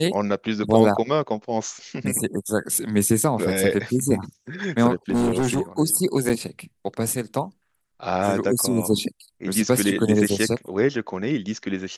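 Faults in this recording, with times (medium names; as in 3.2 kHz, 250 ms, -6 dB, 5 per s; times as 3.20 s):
5.10–5.61 s: clipped -17 dBFS
6.29–6.30 s: dropout 6.7 ms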